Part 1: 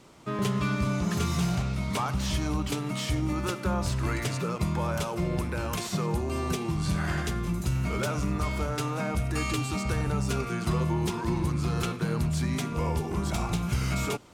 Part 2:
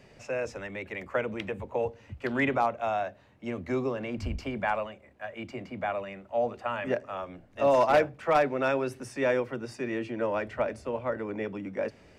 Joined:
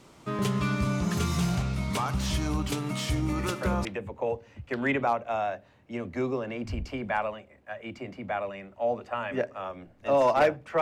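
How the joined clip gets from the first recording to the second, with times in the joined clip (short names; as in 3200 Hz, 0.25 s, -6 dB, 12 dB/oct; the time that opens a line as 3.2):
part 1
3.28 add part 2 from 0.81 s 0.57 s -7.5 dB
3.85 switch to part 2 from 1.38 s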